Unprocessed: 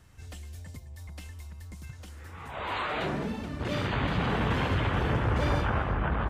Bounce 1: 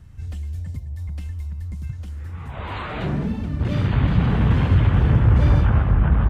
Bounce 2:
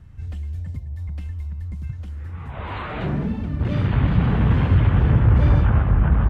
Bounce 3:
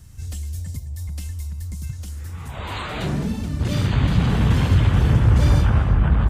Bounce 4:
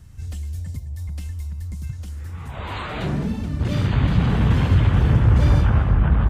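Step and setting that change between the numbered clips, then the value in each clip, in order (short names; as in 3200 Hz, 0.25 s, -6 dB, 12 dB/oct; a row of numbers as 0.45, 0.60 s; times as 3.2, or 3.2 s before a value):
tone controls, treble: -3, -11, +14, +6 dB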